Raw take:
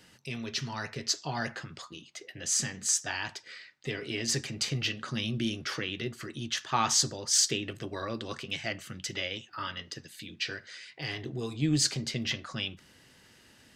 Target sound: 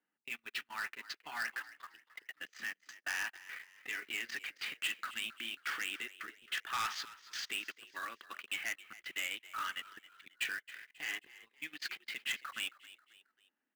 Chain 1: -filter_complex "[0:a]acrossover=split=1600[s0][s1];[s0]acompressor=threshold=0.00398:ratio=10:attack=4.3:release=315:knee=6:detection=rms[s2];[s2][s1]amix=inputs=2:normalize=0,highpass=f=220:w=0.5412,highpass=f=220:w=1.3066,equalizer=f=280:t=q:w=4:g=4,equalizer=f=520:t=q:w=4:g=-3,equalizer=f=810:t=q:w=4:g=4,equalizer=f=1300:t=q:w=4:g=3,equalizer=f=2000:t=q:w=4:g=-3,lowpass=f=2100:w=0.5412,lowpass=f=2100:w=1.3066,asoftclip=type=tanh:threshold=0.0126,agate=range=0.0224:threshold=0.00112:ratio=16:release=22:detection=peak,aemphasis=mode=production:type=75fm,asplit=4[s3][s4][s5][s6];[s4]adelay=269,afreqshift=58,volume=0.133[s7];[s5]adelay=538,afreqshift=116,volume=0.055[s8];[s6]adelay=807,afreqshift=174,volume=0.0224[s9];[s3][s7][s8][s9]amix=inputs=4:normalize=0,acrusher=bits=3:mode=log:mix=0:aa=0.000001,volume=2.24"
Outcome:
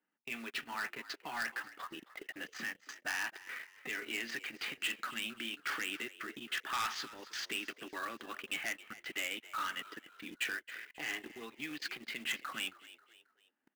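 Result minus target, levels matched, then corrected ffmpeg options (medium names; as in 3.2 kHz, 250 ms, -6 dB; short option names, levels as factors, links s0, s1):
compression: peak gain reduction -9 dB
-filter_complex "[0:a]acrossover=split=1600[s0][s1];[s0]acompressor=threshold=0.00126:ratio=10:attack=4.3:release=315:knee=6:detection=rms[s2];[s2][s1]amix=inputs=2:normalize=0,highpass=f=220:w=0.5412,highpass=f=220:w=1.3066,equalizer=f=280:t=q:w=4:g=4,equalizer=f=520:t=q:w=4:g=-3,equalizer=f=810:t=q:w=4:g=4,equalizer=f=1300:t=q:w=4:g=3,equalizer=f=2000:t=q:w=4:g=-3,lowpass=f=2100:w=0.5412,lowpass=f=2100:w=1.3066,asoftclip=type=tanh:threshold=0.0126,agate=range=0.0224:threshold=0.00112:ratio=16:release=22:detection=peak,aemphasis=mode=production:type=75fm,asplit=4[s3][s4][s5][s6];[s4]adelay=269,afreqshift=58,volume=0.133[s7];[s5]adelay=538,afreqshift=116,volume=0.055[s8];[s6]adelay=807,afreqshift=174,volume=0.0224[s9];[s3][s7][s8][s9]amix=inputs=4:normalize=0,acrusher=bits=3:mode=log:mix=0:aa=0.000001,volume=2.24"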